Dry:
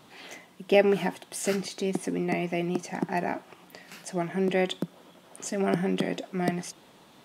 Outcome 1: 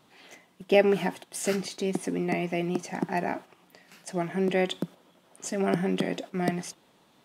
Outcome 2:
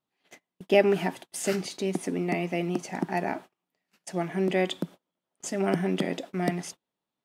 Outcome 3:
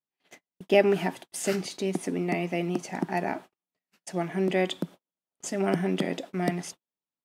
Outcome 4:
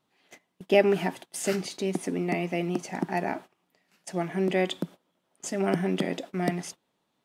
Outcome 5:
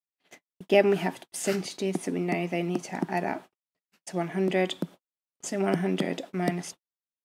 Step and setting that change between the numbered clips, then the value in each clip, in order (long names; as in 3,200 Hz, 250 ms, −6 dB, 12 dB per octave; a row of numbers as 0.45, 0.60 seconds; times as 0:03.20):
noise gate, range: −7, −33, −46, −21, −60 decibels